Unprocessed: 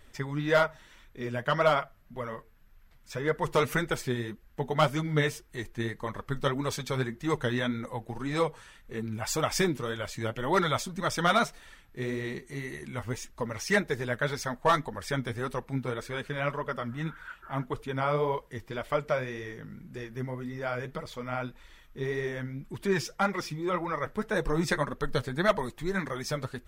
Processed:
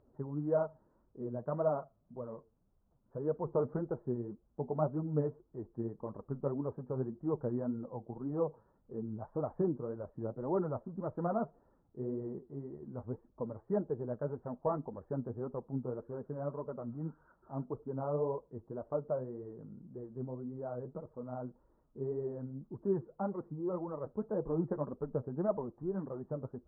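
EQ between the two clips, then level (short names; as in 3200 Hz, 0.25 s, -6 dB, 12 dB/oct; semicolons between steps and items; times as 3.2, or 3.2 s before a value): Gaussian blur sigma 11 samples; HPF 220 Hz 6 dB/oct; air absorption 210 m; -1.0 dB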